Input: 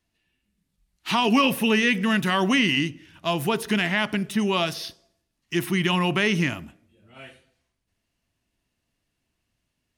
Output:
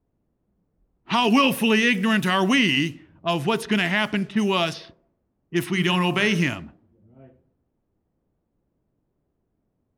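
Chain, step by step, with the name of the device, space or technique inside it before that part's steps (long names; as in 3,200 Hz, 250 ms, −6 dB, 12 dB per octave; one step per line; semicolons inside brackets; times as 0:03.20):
0:05.64–0:06.47: hum removal 47.93 Hz, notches 38
cassette deck with a dynamic noise filter (white noise bed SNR 32 dB; low-pass that shuts in the quiet parts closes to 300 Hz, open at −20 dBFS)
level +1.5 dB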